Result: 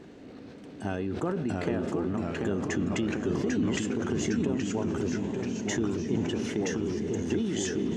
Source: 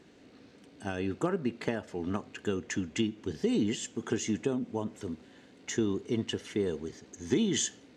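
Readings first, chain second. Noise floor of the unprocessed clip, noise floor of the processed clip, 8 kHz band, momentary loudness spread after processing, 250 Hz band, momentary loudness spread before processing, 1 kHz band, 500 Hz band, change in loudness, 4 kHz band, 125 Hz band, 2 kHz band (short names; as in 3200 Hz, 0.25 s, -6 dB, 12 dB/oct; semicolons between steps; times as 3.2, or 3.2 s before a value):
-57 dBFS, -46 dBFS, -1.0 dB, 5 LU, +4.0 dB, 11 LU, +4.0 dB, +2.5 dB, +3.0 dB, -1.5 dB, +6.0 dB, +3.5 dB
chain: tilt shelf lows +4.5 dB, about 1500 Hz; on a send: diffused feedback echo 0.472 s, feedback 48%, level -14 dB; on the sum: compressor, threshold -34 dBFS, peak gain reduction 15 dB; echoes that change speed 0.636 s, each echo -1 st, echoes 3; sustainer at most 27 dB/s; gain +5 dB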